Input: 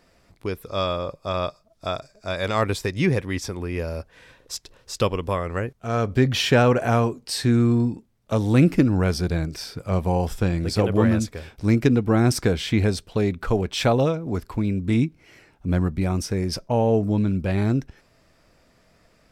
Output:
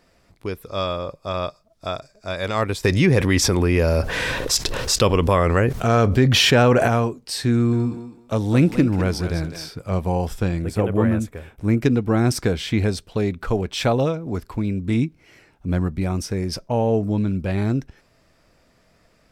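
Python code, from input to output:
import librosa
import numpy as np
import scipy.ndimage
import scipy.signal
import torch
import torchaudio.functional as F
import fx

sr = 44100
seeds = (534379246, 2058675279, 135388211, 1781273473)

y = fx.env_flatten(x, sr, amount_pct=70, at=(2.83, 6.87), fade=0.02)
y = fx.echo_thinned(y, sr, ms=206, feedback_pct=24, hz=350.0, wet_db=-8.5, at=(7.52, 9.69))
y = fx.peak_eq(y, sr, hz=4800.0, db=-14.0, octaves=0.89, at=(10.62, 11.82))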